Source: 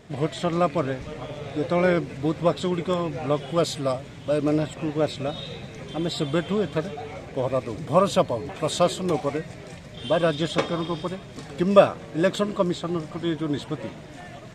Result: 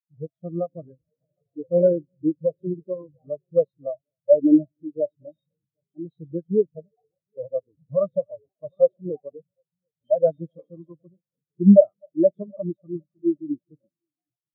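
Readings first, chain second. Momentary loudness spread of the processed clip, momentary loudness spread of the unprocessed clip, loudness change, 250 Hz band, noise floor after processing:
21 LU, 14 LU, +2.5 dB, +3.0 dB, under -85 dBFS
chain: CVSD 32 kbps; multi-head echo 0.253 s, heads first and third, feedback 45%, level -17.5 dB; maximiser +12 dB; spectral expander 4:1; gain -1 dB

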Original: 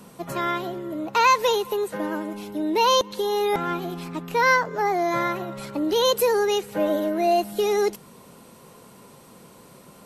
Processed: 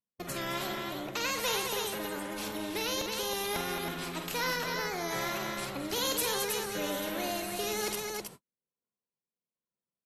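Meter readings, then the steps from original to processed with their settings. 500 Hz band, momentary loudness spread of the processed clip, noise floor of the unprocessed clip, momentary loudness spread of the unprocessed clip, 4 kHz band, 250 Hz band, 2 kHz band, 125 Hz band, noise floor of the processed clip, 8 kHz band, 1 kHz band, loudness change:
-13.0 dB, 7 LU, -49 dBFS, 12 LU, -4.5 dB, -10.5 dB, -8.0 dB, -6.0 dB, under -85 dBFS, 0.0 dB, -13.5 dB, -10.0 dB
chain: gate -38 dBFS, range -59 dB; vibrato 1.7 Hz 63 cents; rotary speaker horn 1.1 Hz; tapped delay 47/218/320 ms -9/-10.5/-8 dB; spectral compressor 2:1; gain -9 dB

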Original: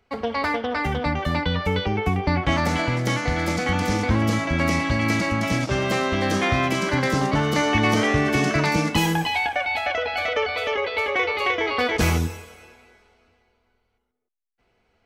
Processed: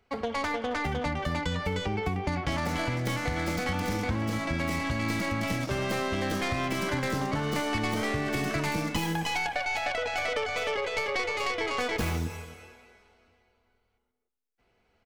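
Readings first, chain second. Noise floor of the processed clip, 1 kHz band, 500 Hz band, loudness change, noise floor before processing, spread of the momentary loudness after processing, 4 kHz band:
-73 dBFS, -7.0 dB, -7.0 dB, -7.5 dB, -70 dBFS, 2 LU, -7.0 dB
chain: tracing distortion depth 0.12 ms; compressor, threshold -23 dBFS, peak gain reduction 8 dB; outdoor echo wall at 46 m, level -18 dB; gain -3 dB

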